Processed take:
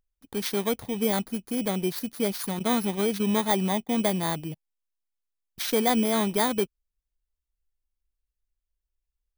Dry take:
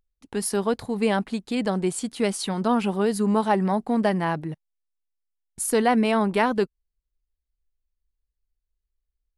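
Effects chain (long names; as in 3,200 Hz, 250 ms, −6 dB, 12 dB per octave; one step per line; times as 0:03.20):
samples in bit-reversed order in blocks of 16 samples
0:02.59–0:03.89: noise gate −27 dBFS, range −16 dB
level −3 dB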